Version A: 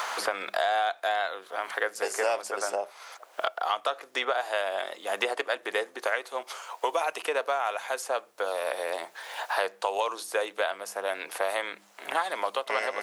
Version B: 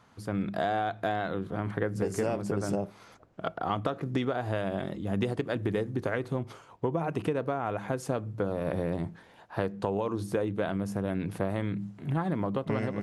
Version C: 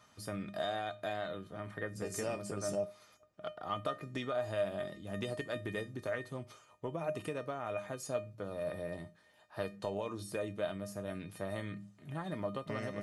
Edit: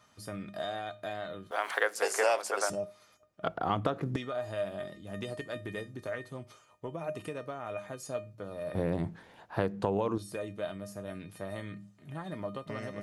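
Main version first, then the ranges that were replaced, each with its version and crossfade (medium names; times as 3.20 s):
C
1.51–2.70 s: from A
3.43–4.16 s: from B
8.75–10.18 s: from B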